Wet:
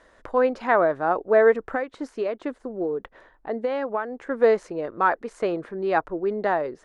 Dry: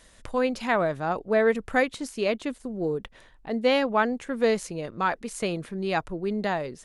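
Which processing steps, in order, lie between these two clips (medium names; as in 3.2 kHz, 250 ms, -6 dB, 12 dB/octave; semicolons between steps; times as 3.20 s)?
high-order bell 730 Hz +12 dB 3 oct; 1.66–4.30 s: compression 12:1, threshold -16 dBFS, peak gain reduction 12 dB; distance through air 75 m; trim -6.5 dB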